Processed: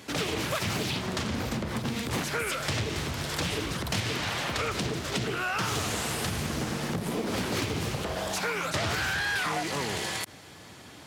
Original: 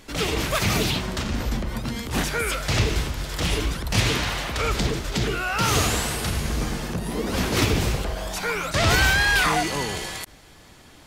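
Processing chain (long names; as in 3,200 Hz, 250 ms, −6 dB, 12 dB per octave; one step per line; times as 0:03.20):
high-pass filter 85 Hz 24 dB per octave
downward compressor 6 to 1, threshold −29 dBFS, peak gain reduction 12.5 dB
highs frequency-modulated by the lows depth 0.48 ms
level +2 dB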